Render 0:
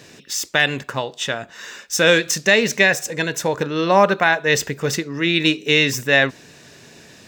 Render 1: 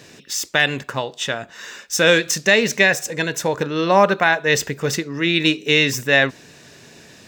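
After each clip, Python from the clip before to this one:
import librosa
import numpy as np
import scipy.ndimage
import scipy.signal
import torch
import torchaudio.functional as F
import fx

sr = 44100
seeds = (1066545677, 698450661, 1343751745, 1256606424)

y = x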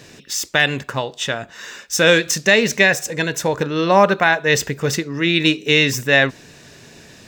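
y = fx.low_shelf(x, sr, hz=65.0, db=11.0)
y = F.gain(torch.from_numpy(y), 1.0).numpy()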